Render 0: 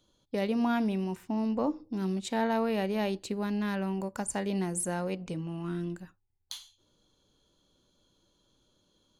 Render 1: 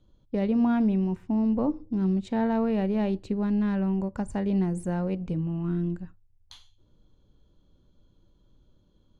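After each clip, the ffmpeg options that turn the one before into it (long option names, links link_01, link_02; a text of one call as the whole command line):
ffmpeg -i in.wav -af "aemphasis=mode=reproduction:type=riaa,volume=-1.5dB" out.wav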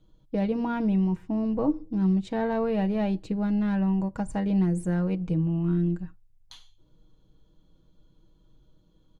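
ffmpeg -i in.wav -af "aecho=1:1:6.3:0.55" out.wav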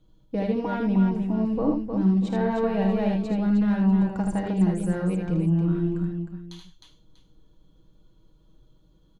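ffmpeg -i in.wav -af "aecho=1:1:53|78|310|642:0.299|0.596|0.531|0.15" out.wav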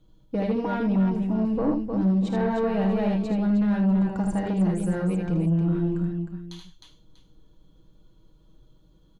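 ffmpeg -i in.wav -af "asoftclip=type=tanh:threshold=-17.5dB,volume=1.5dB" out.wav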